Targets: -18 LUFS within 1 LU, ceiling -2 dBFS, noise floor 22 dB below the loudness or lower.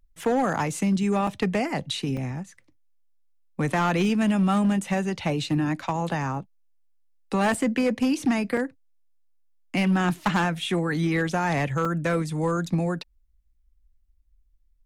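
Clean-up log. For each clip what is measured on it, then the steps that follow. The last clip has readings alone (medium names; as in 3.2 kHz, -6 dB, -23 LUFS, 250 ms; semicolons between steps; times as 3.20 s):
clipped samples 1.1%; clipping level -17.0 dBFS; dropouts 6; longest dropout 4.0 ms; loudness -25.5 LUFS; peak level -17.0 dBFS; loudness target -18.0 LUFS
-> clip repair -17 dBFS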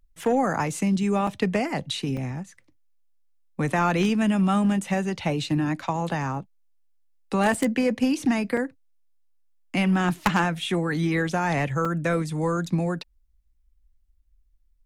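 clipped samples 0.0%; dropouts 6; longest dropout 4.0 ms
-> interpolate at 0.24/1.27/2.17/7.54/8.57/11.85 s, 4 ms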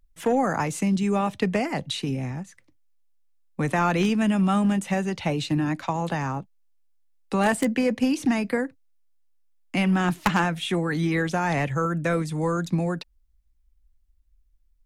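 dropouts 0; loudness -25.0 LUFS; peak level -8.0 dBFS; loudness target -18.0 LUFS
-> trim +7 dB; peak limiter -2 dBFS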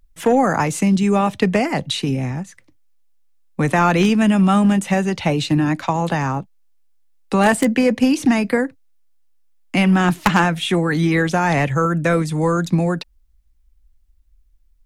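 loudness -18.0 LUFS; peak level -2.0 dBFS; noise floor -56 dBFS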